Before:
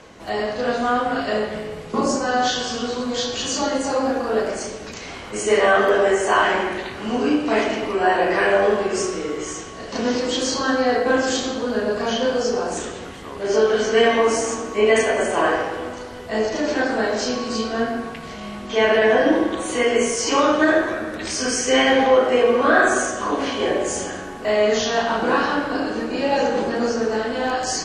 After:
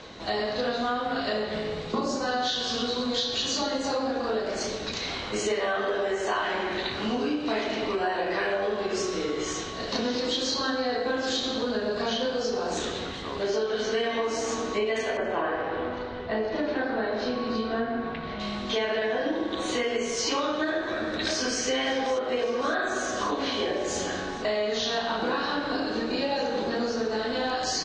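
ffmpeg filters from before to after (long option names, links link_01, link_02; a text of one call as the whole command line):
ffmpeg -i in.wav -filter_complex "[0:a]asettb=1/sr,asplit=3[link_01][link_02][link_03];[link_01]atrim=end=15.174[link_04];[link_02]atrim=start=15.17:end=18.4,asetpts=PTS-STARTPTS,afade=type=in:duration=0.004:curve=qsin,afade=type=out:start_time=3.226:duration=0.004:curve=qsin,lowpass=2300[link_05];[link_03]atrim=start=18.396[link_06];[link_04][link_05]acrossfade=duration=0.004:curve1=hsin:curve2=qsin[link_07];[link_07][link_06]acrossfade=duration=0.004:curve1=qsin:curve2=hsin,asplit=2[link_08][link_09];[link_09]afade=type=in:start_time=20.7:duration=0.01,afade=type=out:start_time=21.62:duration=0.01,aecho=0:1:560|1120|1680|2240|2800|3360|3920:0.334965|0.200979|0.120588|0.0723525|0.0434115|0.0260469|0.0156281[link_10];[link_08][link_10]amix=inputs=2:normalize=0,lowpass=frequency=6600:width=0.5412,lowpass=frequency=6600:width=1.3066,equalizer=frequency=3900:width_type=o:width=0.35:gain=12,acompressor=threshold=-25dB:ratio=6" out.wav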